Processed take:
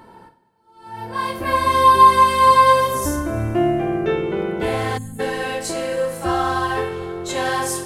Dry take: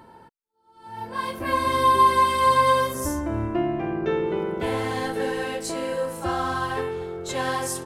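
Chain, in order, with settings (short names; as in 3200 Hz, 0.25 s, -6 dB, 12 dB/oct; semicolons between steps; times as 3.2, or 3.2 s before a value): two-slope reverb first 0.43 s, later 2.5 s, from -15 dB, DRR 5 dB; spectral gain 4.98–5.2, 300–6500 Hz -26 dB; gain +3.5 dB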